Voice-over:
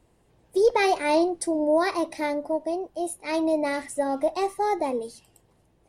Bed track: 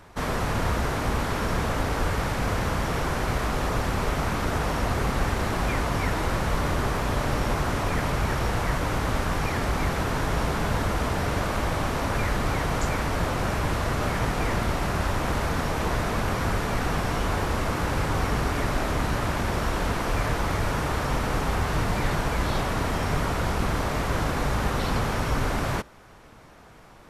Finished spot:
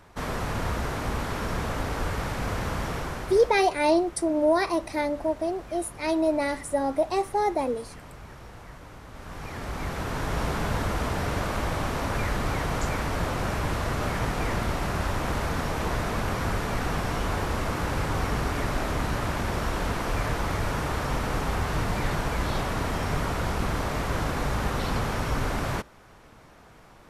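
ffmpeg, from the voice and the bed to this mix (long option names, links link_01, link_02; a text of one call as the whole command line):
ffmpeg -i stem1.wav -i stem2.wav -filter_complex "[0:a]adelay=2750,volume=0dB[link_01];[1:a]volume=13.5dB,afade=type=out:start_time=2.85:duration=0.78:silence=0.16788,afade=type=in:start_time=9.12:duration=1.36:silence=0.141254[link_02];[link_01][link_02]amix=inputs=2:normalize=0" out.wav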